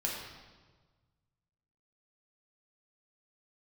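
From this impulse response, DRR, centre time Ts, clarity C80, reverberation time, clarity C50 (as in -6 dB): -3.0 dB, 66 ms, 3.5 dB, 1.4 s, 1.5 dB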